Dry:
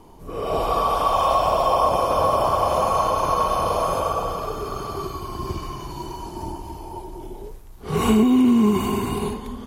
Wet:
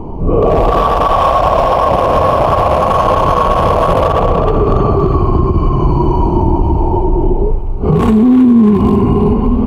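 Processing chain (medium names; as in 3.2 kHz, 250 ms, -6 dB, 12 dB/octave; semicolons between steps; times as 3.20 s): local Wiener filter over 25 samples; tone controls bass +4 dB, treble -7 dB; compression, threshold -27 dBFS, peak gain reduction 15 dB; on a send: band-passed feedback delay 320 ms, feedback 55%, band-pass 2 kHz, level -9 dB; on the sum: loudness maximiser +23.5 dB; trim -1 dB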